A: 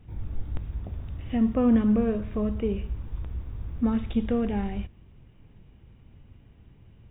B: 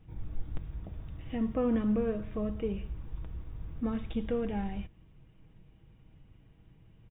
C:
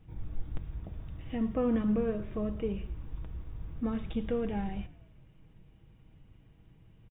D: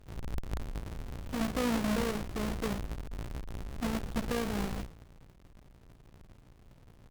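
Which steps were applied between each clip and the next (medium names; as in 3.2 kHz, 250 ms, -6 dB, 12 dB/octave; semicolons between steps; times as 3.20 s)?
comb 6.3 ms, depth 40%; trim -5.5 dB
frequency-shifting echo 115 ms, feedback 59%, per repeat -39 Hz, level -20.5 dB
square wave that keeps the level; AM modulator 58 Hz, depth 50%; one-sided clip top -33.5 dBFS, bottom -23 dBFS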